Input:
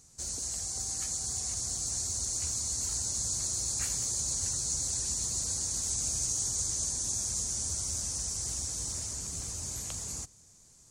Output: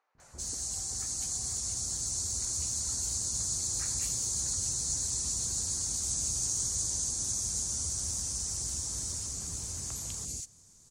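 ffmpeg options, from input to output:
-filter_complex "[0:a]acrossover=split=610|2200[a][b][c];[a]adelay=150[d];[c]adelay=200[e];[d][b][e]amix=inputs=3:normalize=0"

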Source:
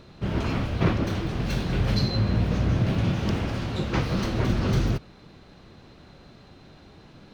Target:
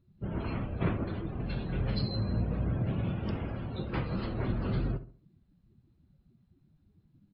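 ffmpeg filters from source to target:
-filter_complex "[0:a]afftdn=nr=26:nf=-37,asplit=2[a][b];[b]adelay=69,lowpass=f=1.4k:p=1,volume=-12.5dB,asplit=2[c][d];[d]adelay=69,lowpass=f=1.4k:p=1,volume=0.38,asplit=2[e][f];[f]adelay=69,lowpass=f=1.4k:p=1,volume=0.38,asplit=2[g][h];[h]adelay=69,lowpass=f=1.4k:p=1,volume=0.38[i];[c][e][g][i]amix=inputs=4:normalize=0[j];[a][j]amix=inputs=2:normalize=0,volume=-7.5dB" -ar 12000 -c:a libmp3lame -b:a 24k

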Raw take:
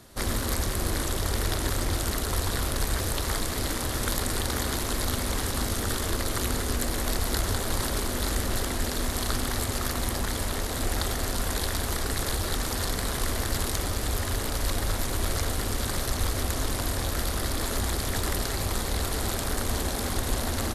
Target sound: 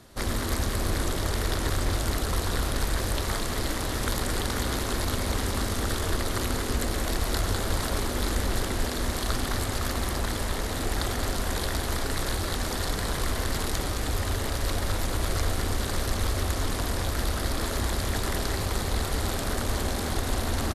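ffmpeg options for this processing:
-filter_complex "[0:a]highshelf=f=7.7k:g=-6,asplit=2[a][b];[b]adelay=215.7,volume=-6dB,highshelf=f=4k:g=-4.85[c];[a][c]amix=inputs=2:normalize=0"

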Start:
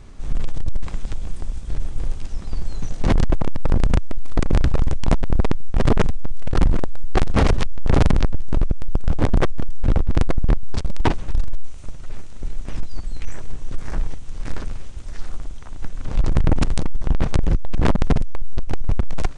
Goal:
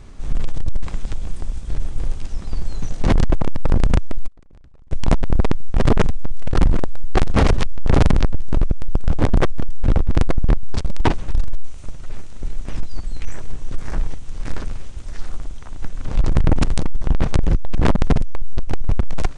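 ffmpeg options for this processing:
-filter_complex "[0:a]asplit=3[a][b][c];[a]afade=t=out:st=4.26:d=0.02[d];[b]agate=range=-33dB:threshold=-4dB:ratio=16:detection=peak,afade=t=in:st=4.26:d=0.02,afade=t=out:st=4.91:d=0.02[e];[c]afade=t=in:st=4.91:d=0.02[f];[d][e][f]amix=inputs=3:normalize=0,volume=1.5dB"

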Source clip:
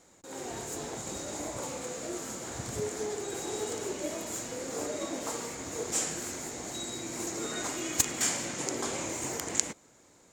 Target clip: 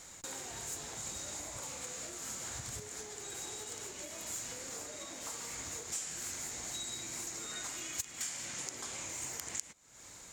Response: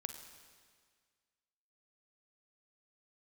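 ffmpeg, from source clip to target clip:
-af "acompressor=threshold=-47dB:ratio=12,equalizer=f=350:w=0.42:g=-13,volume=11.5dB"

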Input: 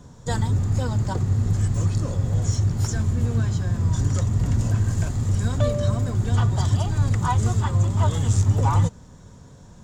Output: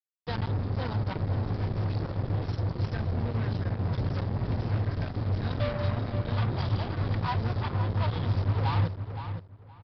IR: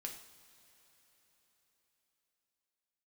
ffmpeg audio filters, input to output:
-filter_complex "[0:a]highpass=f=51:p=1,bandreject=f=2.9k:w=16,acrusher=bits=3:mix=0:aa=0.5,asplit=2[a][b];[b]adelay=518,lowpass=f=3.6k:p=1,volume=-9dB,asplit=2[c][d];[d]adelay=518,lowpass=f=3.6k:p=1,volume=0.2,asplit=2[e][f];[f]adelay=518,lowpass=f=3.6k:p=1,volume=0.2[g];[c][e][g]amix=inputs=3:normalize=0[h];[a][h]amix=inputs=2:normalize=0,aresample=11025,aresample=44100,volume=-7.5dB"

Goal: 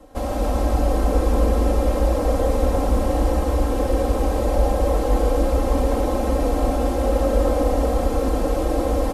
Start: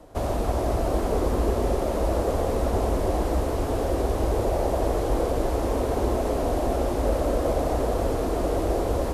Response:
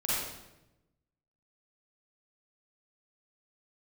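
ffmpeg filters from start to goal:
-filter_complex "[0:a]aecho=1:1:3.8:0.86,asplit=2[a][b];[1:a]atrim=start_sample=2205,adelay=106[c];[b][c]afir=irnorm=-1:irlink=0,volume=-11dB[d];[a][d]amix=inputs=2:normalize=0,volume=-1dB"

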